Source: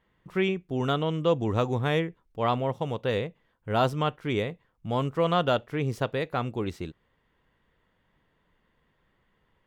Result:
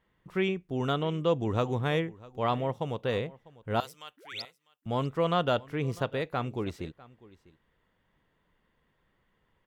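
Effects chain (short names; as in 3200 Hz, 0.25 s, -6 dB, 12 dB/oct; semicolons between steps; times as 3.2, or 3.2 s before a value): 4.17–4.42 painted sound rise 230–5700 Hz -29 dBFS; 3.8–4.86 differentiator; echo 0.649 s -21.5 dB; gain -2.5 dB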